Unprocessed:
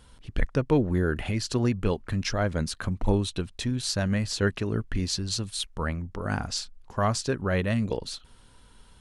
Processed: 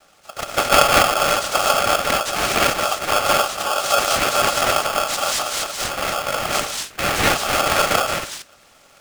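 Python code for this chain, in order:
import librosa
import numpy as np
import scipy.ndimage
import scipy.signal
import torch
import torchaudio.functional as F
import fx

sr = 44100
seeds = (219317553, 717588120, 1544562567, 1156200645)

y = fx.zero_step(x, sr, step_db=-37.0, at=(4.48, 5.15))
y = fx.rev_gated(y, sr, seeds[0], gate_ms=270, shape='rising', drr_db=-3.5)
y = fx.noise_vocoder(y, sr, seeds[1], bands=3)
y = fx.peak_eq(y, sr, hz=400.0, db=7.5, octaves=0.2)
y = y * np.sign(np.sin(2.0 * np.pi * 980.0 * np.arange(len(y)) / sr))
y = F.gain(torch.from_numpy(y), 3.5).numpy()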